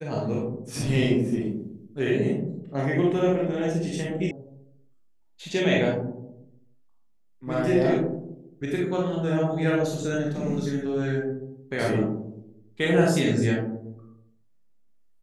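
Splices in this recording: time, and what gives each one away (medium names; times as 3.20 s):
4.31 s: sound stops dead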